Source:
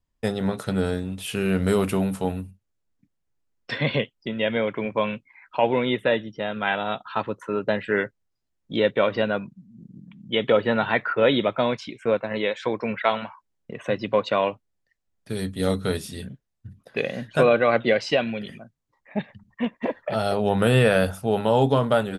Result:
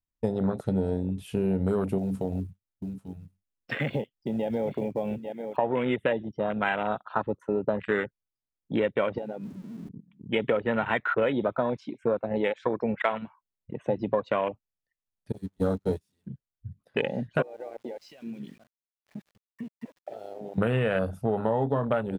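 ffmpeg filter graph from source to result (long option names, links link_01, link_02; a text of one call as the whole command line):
ffmpeg -i in.wav -filter_complex "[0:a]asettb=1/sr,asplit=3[link_01][link_02][link_03];[link_01]atrim=end=1.984[link_04];[link_02]atrim=start=1.98:end=5.57,asetpts=PTS-STARTPTS,afade=type=in:duration=0.004:curve=qsin,afade=type=out:start_time=3.586:duration=0.004:curve=qsin,aecho=1:1:840:0.237,atrim=end_sample=158319,acompressor=threshold=-26dB:ratio=3:attack=3.2:release=140:knee=1:detection=peak,acrusher=bits=5:mode=log:mix=0:aa=0.000001[link_05];[link_03]atrim=start=5.566[link_06];[link_04][link_05]acrossfade=duration=0.004:curve1=hsin:curve2=qsin[link_07];[link_07][link_06]acrossfade=duration=0.004:curve1=qsin:curve2=hsin,asettb=1/sr,asplit=3[link_08][link_09][link_10];[link_08]atrim=end=9.184[link_11];[link_09]atrim=start=9.18:end=9.89,asetpts=PTS-STARTPTS,afade=type=in:duration=0.004:curve=qsin,afade=type=out:start_time=0.706:duration=0.004:curve=qsin,aeval=exprs='val(0)+0.5*0.02*sgn(val(0))':channel_layout=same,equalizer=frequency=120:width=2:gain=-13.5,acompressor=threshold=-32dB:ratio=5:attack=3.2:release=140:knee=1:detection=peak[link_12];[link_10]atrim=start=9.886[link_13];[link_11][link_12]acrossfade=duration=0.004:curve1=hsin:curve2=qsin[link_14];[link_14][link_13]acrossfade=duration=0.004:curve1=qsin:curve2=hsin,asettb=1/sr,asplit=3[link_15][link_16][link_17];[link_15]atrim=end=15.324[link_18];[link_16]atrim=start=15.32:end=16.27,asetpts=PTS-STARTPTS,afade=type=in:duration=0.004:curve=qsin,afade=type=out:start_time=0.946:duration=0.004:curve=qsin,aeval=exprs='val(0)+0.5*0.0422*sgn(val(0))':channel_layout=same,equalizer=frequency=6700:width=2.7:gain=2.5,agate=range=-33dB:threshold=-23dB:ratio=16:release=100:detection=peak[link_19];[link_17]atrim=start=16.266[link_20];[link_18][link_19]acrossfade=duration=0.004:curve1=hsin:curve2=qsin[link_21];[link_21][link_20]acrossfade=duration=0.004:curve1=qsin:curve2=hsin,asettb=1/sr,asplit=3[link_22][link_23][link_24];[link_22]atrim=end=17.424[link_25];[link_23]atrim=start=17.42:end=20.58,asetpts=PTS-STARTPTS,afade=type=in:duration=0.004:curve=qsin,afade=type=out:start_time=3.156:duration=0.004:curve=qsin,highpass=frequency=130:poles=1,acompressor=threshold=-33dB:ratio=16:attack=3.2:release=140:knee=1:detection=peak,aeval=exprs='val(0)*gte(abs(val(0)),0.00596)':channel_layout=same[link_26];[link_24]atrim=start=20.576[link_27];[link_25][link_26]acrossfade=duration=0.004:curve1=hsin:curve2=qsin[link_28];[link_28][link_27]acrossfade=duration=0.004:curve1=qsin:curve2=hsin,afwtdn=0.0398,acompressor=threshold=-24dB:ratio=6,volume=2dB" out.wav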